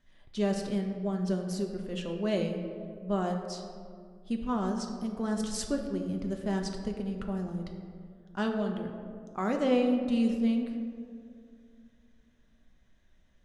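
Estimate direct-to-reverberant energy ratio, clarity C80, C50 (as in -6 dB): 2.5 dB, 6.5 dB, 5.5 dB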